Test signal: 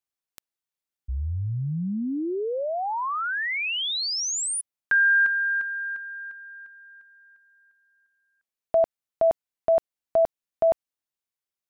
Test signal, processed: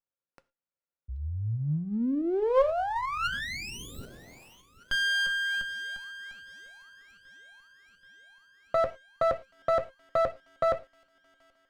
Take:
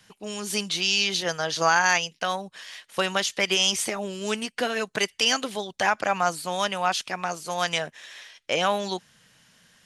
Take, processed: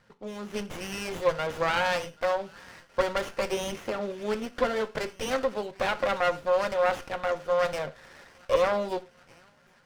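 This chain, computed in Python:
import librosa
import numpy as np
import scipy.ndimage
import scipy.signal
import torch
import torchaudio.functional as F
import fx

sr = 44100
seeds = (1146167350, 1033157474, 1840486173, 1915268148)

p1 = scipy.signal.sosfilt(scipy.signal.butter(2, 69.0, 'highpass', fs=sr, output='sos'), x)
p2 = fx.dynamic_eq(p1, sr, hz=440.0, q=0.8, threshold_db=-33.0, ratio=4.0, max_db=4)
p3 = fx.small_body(p2, sr, hz=(530.0, 1400.0, 4000.0), ring_ms=100, db=13)
p4 = fx.clip_asym(p3, sr, top_db=-21.0, bottom_db=-9.5)
p5 = fx.air_absorb(p4, sr, metres=180.0)
p6 = p5 + fx.echo_wet_highpass(p5, sr, ms=780, feedback_pct=69, hz=2300.0, wet_db=-19.0, dry=0)
p7 = fx.rev_gated(p6, sr, seeds[0], gate_ms=130, shape='falling', drr_db=10.0)
p8 = fx.running_max(p7, sr, window=9)
y = p8 * 10.0 ** (-3.0 / 20.0)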